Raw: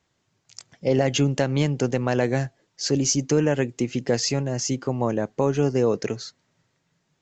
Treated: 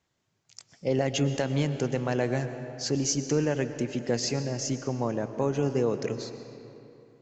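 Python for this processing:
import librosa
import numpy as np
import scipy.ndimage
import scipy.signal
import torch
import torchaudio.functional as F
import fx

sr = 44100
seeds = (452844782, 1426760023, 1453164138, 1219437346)

y = fx.rev_freeverb(x, sr, rt60_s=3.1, hf_ratio=0.65, predelay_ms=80, drr_db=9.5)
y = y * 10.0 ** (-5.5 / 20.0)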